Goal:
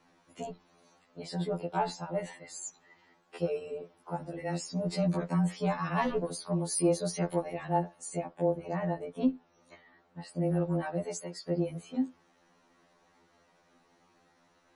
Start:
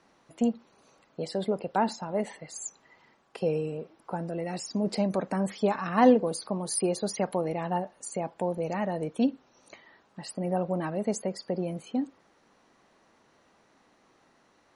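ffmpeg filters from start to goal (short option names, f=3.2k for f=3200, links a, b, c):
-filter_complex "[0:a]asettb=1/sr,asplit=3[a][b][c];[a]atrim=end=8.244[d];[b]atrim=start=8.24:end=10.35,asetpts=PTS-STARTPTS,afade=t=in:d=0.004:c=qsin,afade=t=out:st=2.106:d=0.004:c=qsin,highshelf=f=3.6k:g=-11.5[e];[c]atrim=start=10.346[f];[d][e]acrossfade=d=0.004:c1=hsin:c2=qsin[g];[g][f]acrossfade=d=0.004:c1=qsin:c2=hsin,asettb=1/sr,asplit=3[h][i][j];[h]atrim=end=11.014[k];[i]atrim=start=11.01:end=11.47,asetpts=PTS-STARTPTS,afade=t=in:d=0.004:c=qsin,afade=t=out:st=0.456:d=0.004:c=qsin,highpass=f=730:p=1[l];[j]atrim=start=11.466[m];[k][l]acrossfade=d=0.004:c1=hsin:c2=qsin[n];[n][m]acrossfade=d=0.004:c1=qsin:c2=hsin,asoftclip=type=tanh:threshold=-14dB,afreqshift=-16,afftfilt=real='re*2*eq(mod(b,4),0)':imag='im*2*eq(mod(b,4),0)':win_size=2048:overlap=0.75"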